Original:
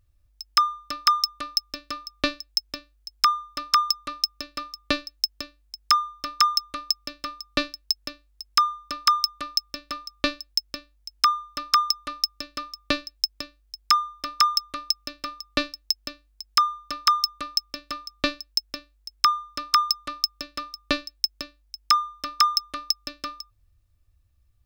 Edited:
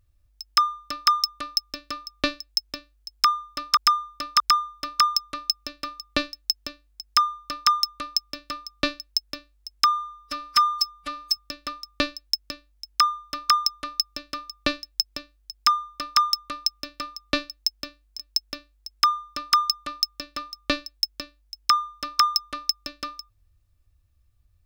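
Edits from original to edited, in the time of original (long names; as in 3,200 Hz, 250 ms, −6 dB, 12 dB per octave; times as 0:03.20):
0:03.14–0:03.77: repeat, 3 plays
0:08.61–0:09.61: time-stretch 1.5×
0:16.43–0:18.40: remove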